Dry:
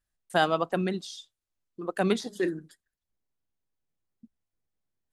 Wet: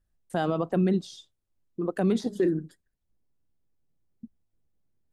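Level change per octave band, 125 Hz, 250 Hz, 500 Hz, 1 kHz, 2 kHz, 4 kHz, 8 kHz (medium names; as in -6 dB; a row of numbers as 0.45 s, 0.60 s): +5.5 dB, +5.0 dB, +0.5 dB, -5.0 dB, -8.5 dB, -7.5 dB, -4.0 dB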